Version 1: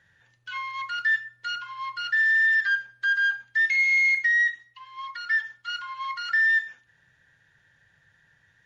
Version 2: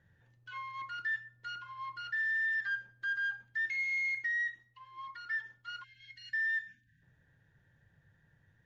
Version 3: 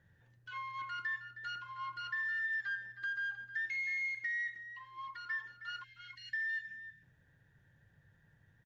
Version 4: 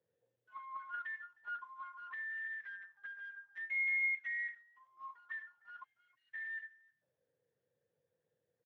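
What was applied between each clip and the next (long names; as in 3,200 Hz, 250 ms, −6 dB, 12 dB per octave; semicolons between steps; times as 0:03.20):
tilt shelving filter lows +9 dB, about 810 Hz; time-frequency box erased 0:05.83–0:07.02, 320–1,500 Hz; level −6 dB
downward compressor, threshold −35 dBFS, peak gain reduction 5 dB; slap from a distant wall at 54 metres, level −11 dB
envelope filter 460–2,100 Hz, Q 8.4, up, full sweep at −35.5 dBFS; level +4.5 dB; Speex 15 kbit/s 32,000 Hz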